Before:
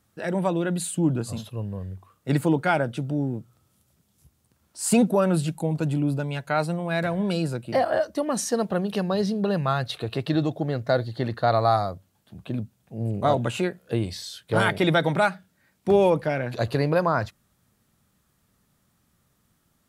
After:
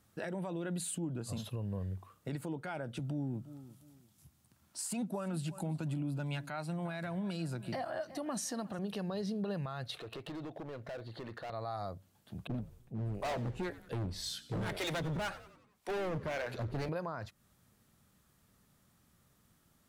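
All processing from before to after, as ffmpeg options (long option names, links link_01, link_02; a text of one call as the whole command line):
ffmpeg -i in.wav -filter_complex "[0:a]asettb=1/sr,asplit=3[link_01][link_02][link_03];[link_01]atrim=end=2.994[link_04];[link_02]atrim=start=2.99:end=8.79,asetpts=PTS-STARTPTS,afade=type=in:duration=0.004:curve=qsin,afade=type=out:start_time=5.796:duration=0.004:curve=qsin,highpass=frequency=78:width=0.5412,highpass=frequency=78:width=1.3066,equalizer=frequency=460:width=3.2:gain=-9.5,aecho=1:1:352|704:0.0794|0.023,atrim=end_sample=255780[link_05];[link_03]atrim=start=8.786[link_06];[link_04][link_05]acrossfade=duration=0.004:curve1=hsin:curve2=qsin[link_07];[link_07][link_06]acrossfade=duration=0.004:curve1=qsin:curve2=hsin,asettb=1/sr,asplit=3[link_08][link_09][link_10];[link_08]atrim=end=9.994[link_11];[link_09]atrim=start=9.99:end=11.5,asetpts=PTS-STARTPTS,afade=type=in:duration=0.004:curve=qsin,afade=type=out:start_time=1.506:duration=0.004:curve=qsin,bass=frequency=250:gain=-9,treble=frequency=4000:gain=-10,acompressor=threshold=-39dB:ratio=2.5:attack=3.2:release=140:knee=1:detection=peak,asoftclip=type=hard:threshold=-38dB[link_12];[link_10]atrim=start=11.496[link_13];[link_11][link_12]acrossfade=duration=0.004:curve1=hsin:curve2=qsin[link_14];[link_14][link_13]acrossfade=duration=0.004:curve1=qsin:curve2=hsin,asettb=1/sr,asplit=3[link_15][link_16][link_17];[link_15]atrim=end=12.474[link_18];[link_16]atrim=start=12.47:end=16.89,asetpts=PTS-STARTPTS,afade=type=in:duration=0.004:curve=qsin,afade=type=out:start_time=4.416:duration=0.004:curve=qsin,acrossover=split=430[link_19][link_20];[link_19]aeval=exprs='val(0)*(1-1/2+1/2*cos(2*PI*1.9*n/s))':channel_layout=same[link_21];[link_20]aeval=exprs='val(0)*(1-1/2-1/2*cos(2*PI*1.9*n/s))':channel_layout=same[link_22];[link_21][link_22]amix=inputs=2:normalize=0,volume=30.5dB,asoftclip=hard,volume=-30.5dB,asplit=6[link_23][link_24][link_25][link_26][link_27][link_28];[link_24]adelay=91,afreqshift=-81,volume=-17dB[link_29];[link_25]adelay=182,afreqshift=-162,volume=-22.5dB[link_30];[link_26]adelay=273,afreqshift=-243,volume=-28dB[link_31];[link_27]adelay=364,afreqshift=-324,volume=-33.5dB[link_32];[link_28]adelay=455,afreqshift=-405,volume=-39.1dB[link_33];[link_23][link_29][link_30][link_31][link_32][link_33]amix=inputs=6:normalize=0,atrim=end_sample=194922[link_34];[link_17]atrim=start=16.886[link_35];[link_18][link_34]acrossfade=duration=0.004:curve1=hsin:curve2=qsin[link_36];[link_36][link_35]acrossfade=duration=0.004:curve1=qsin:curve2=hsin,acompressor=threshold=-32dB:ratio=6,alimiter=level_in=4dB:limit=-24dB:level=0:latency=1:release=65,volume=-4dB,volume=-1.5dB" out.wav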